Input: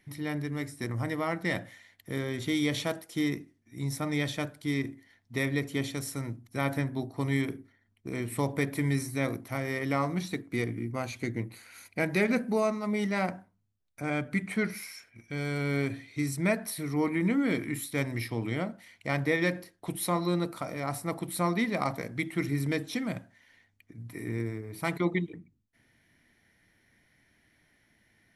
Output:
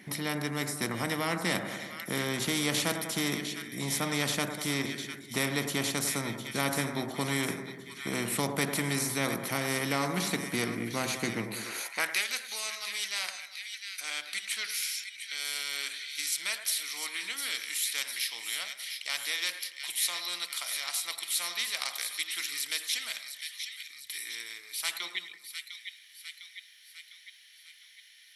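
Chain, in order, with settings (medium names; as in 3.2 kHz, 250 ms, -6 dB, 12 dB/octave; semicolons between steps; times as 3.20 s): two-band feedback delay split 1.6 kHz, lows 97 ms, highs 704 ms, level -13 dB; high-pass sweep 190 Hz -> 3.4 kHz, 11.59–12.24 s; spectrum-flattening compressor 2:1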